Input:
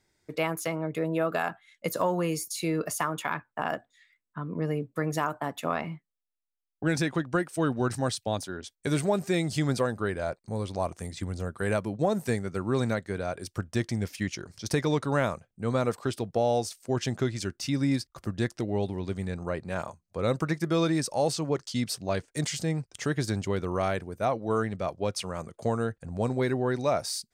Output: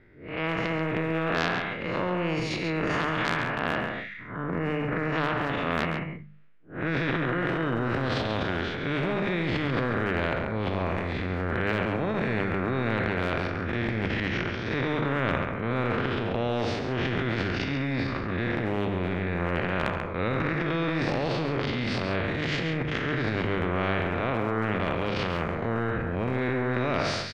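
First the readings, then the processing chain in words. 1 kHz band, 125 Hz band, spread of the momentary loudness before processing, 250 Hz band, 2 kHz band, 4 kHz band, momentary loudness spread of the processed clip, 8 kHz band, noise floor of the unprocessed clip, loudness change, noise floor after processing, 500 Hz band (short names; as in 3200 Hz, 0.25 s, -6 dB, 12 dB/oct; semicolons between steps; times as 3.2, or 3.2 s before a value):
+2.5 dB, +2.0 dB, 7 LU, +1.5 dB, +7.5 dB, +2.5 dB, 3 LU, under -10 dB, -83 dBFS, +2.0 dB, -36 dBFS, 0.0 dB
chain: time blur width 0.14 s; LPF 2100 Hz 24 dB/oct; bell 840 Hz -13 dB 0.96 oct; notches 50/100/150/200 Hz; AGC gain up to 6 dB; transient shaper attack -5 dB, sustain +6 dB; compressor 2.5:1, threshold -27 dBFS, peak gain reduction 6 dB; transient shaper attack 0 dB, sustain +6 dB; echo 0.137 s -9.5 dB; spectral compressor 2:1; gain +7 dB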